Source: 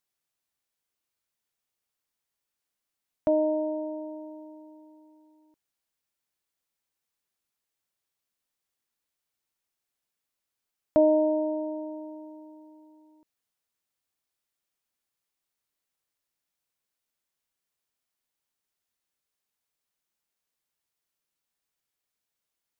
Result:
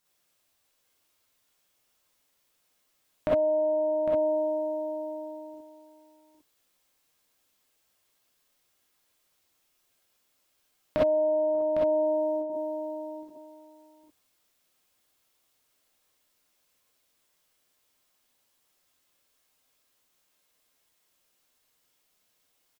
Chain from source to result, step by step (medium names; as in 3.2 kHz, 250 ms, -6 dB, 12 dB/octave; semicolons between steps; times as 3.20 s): 11.55–12.50 s: gate with hold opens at -35 dBFS; compression 10:1, threshold -37 dBFS, peak gain reduction 20.5 dB; on a send: delay 806 ms -8.5 dB; on the sum: gated-style reverb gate 80 ms rising, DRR -6 dB; trim +6 dB